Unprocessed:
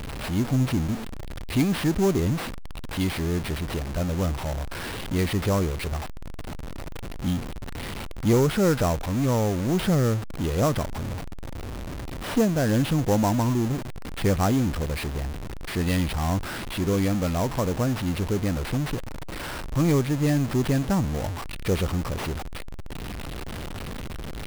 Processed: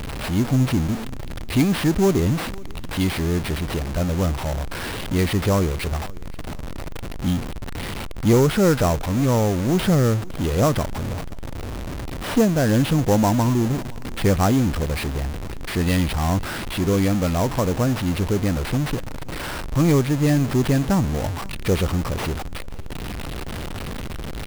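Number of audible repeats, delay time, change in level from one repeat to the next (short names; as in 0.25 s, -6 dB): 2, 0.522 s, -8.0 dB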